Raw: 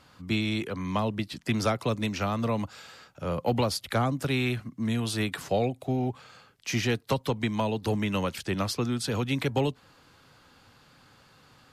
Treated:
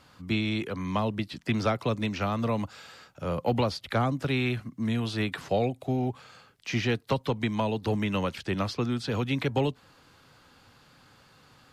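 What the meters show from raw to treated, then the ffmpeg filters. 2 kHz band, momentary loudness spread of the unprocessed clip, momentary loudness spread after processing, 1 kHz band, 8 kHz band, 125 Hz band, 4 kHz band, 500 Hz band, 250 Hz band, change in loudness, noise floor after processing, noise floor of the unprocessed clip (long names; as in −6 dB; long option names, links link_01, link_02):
0.0 dB, 5 LU, 5 LU, 0.0 dB, −9.0 dB, 0.0 dB, −1.5 dB, 0.0 dB, 0.0 dB, 0.0 dB, −59 dBFS, −59 dBFS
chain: -filter_complex "[0:a]acrossover=split=5000[link_01][link_02];[link_02]acompressor=threshold=-55dB:ratio=4:attack=1:release=60[link_03];[link_01][link_03]amix=inputs=2:normalize=0"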